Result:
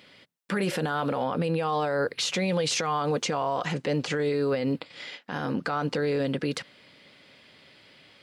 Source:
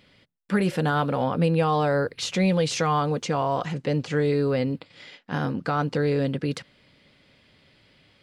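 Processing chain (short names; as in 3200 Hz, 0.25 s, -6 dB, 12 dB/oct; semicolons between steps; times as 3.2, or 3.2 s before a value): HPF 320 Hz 6 dB/oct; limiter -23.5 dBFS, peak gain reduction 11.5 dB; gain +5.5 dB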